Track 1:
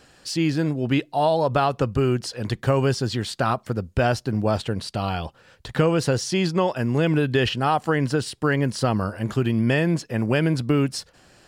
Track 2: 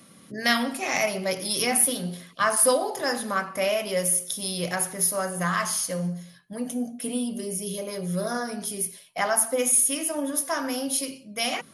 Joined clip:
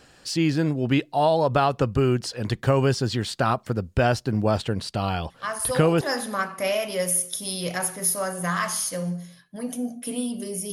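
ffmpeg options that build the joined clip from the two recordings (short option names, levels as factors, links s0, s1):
-filter_complex "[1:a]asplit=2[s0][s1];[0:a]apad=whole_dur=10.72,atrim=end=10.72,atrim=end=6.012[s2];[s1]atrim=start=2.978:end=7.69[s3];[s0]atrim=start=2.27:end=2.98,asetpts=PTS-STARTPTS,volume=0.447,afade=t=in:d=0.004:c=hsin,afade=t=out:st=0.706:d=0.004:c=hsin,adelay=5300[s4];[s2][s3]acrossfade=d=0.004:c1=hsin:c2=hsin[s5];[s5][s4]amix=inputs=2:normalize=0"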